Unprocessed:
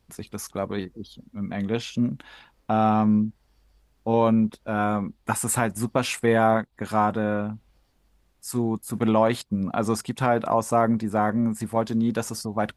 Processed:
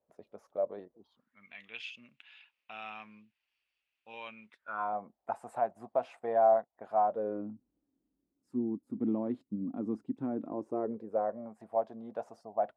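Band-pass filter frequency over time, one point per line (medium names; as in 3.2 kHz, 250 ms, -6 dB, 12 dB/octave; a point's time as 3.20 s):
band-pass filter, Q 5.6
0.91 s 590 Hz
1.49 s 2.6 kHz
4.43 s 2.6 kHz
4.97 s 690 Hz
7.04 s 690 Hz
7.47 s 280 Hz
10.45 s 280 Hz
11.42 s 670 Hz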